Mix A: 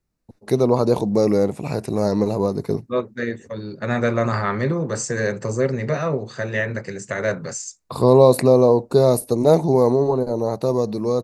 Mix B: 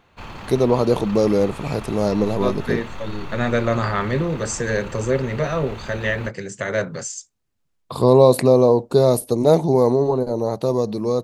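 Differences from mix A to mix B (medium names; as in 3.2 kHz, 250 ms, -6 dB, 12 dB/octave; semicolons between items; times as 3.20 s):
second voice: entry -0.50 s; background: unmuted; master: add peaking EQ 3.2 kHz +10.5 dB 0.24 oct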